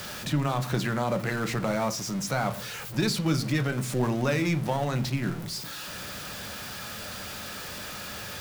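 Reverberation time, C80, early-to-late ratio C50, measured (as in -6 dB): 0.45 s, 22.5 dB, 17.5 dB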